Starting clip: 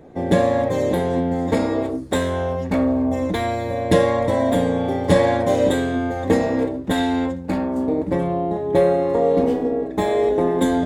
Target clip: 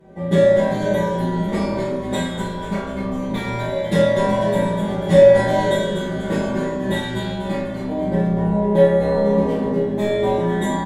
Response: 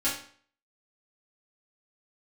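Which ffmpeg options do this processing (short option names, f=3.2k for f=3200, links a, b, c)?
-filter_complex "[0:a]asplit=7[a][b][c][d][e][f][g];[b]adelay=246,afreqshift=-70,volume=-6dB[h];[c]adelay=492,afreqshift=-140,volume=-12.2dB[i];[d]adelay=738,afreqshift=-210,volume=-18.4dB[j];[e]adelay=984,afreqshift=-280,volume=-24.6dB[k];[f]adelay=1230,afreqshift=-350,volume=-30.8dB[l];[g]adelay=1476,afreqshift=-420,volume=-37dB[m];[a][h][i][j][k][l][m]amix=inputs=7:normalize=0[n];[1:a]atrim=start_sample=2205,asetrate=30870,aresample=44100[o];[n][o]afir=irnorm=-1:irlink=0,volume=-11.5dB"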